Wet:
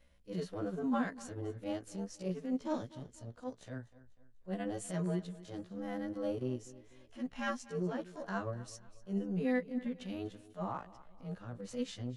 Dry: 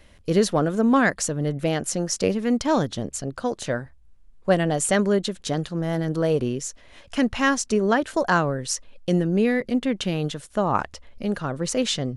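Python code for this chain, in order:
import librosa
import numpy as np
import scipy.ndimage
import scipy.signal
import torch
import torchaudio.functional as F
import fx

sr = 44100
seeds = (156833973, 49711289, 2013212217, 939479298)

y = fx.frame_reverse(x, sr, frame_ms=32.0)
y = fx.transient(y, sr, attack_db=-11, sustain_db=-7)
y = fx.hpss(y, sr, part='percussive', gain_db=-13)
y = fx.echo_feedback(y, sr, ms=246, feedback_pct=41, wet_db=-18.5)
y = y * 10.0 ** (-7.5 / 20.0)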